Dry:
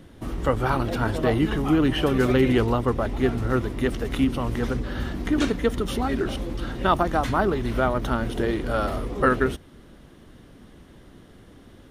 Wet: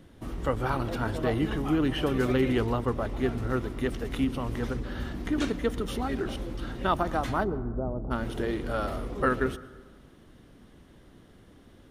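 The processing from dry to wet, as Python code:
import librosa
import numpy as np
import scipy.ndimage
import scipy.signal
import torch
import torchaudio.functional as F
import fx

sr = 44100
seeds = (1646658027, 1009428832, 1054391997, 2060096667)

y = fx.gaussian_blur(x, sr, sigma=12.0, at=(7.43, 8.1), fade=0.02)
y = fx.rev_plate(y, sr, seeds[0], rt60_s=1.3, hf_ratio=0.35, predelay_ms=105, drr_db=18.0)
y = F.gain(torch.from_numpy(y), -5.5).numpy()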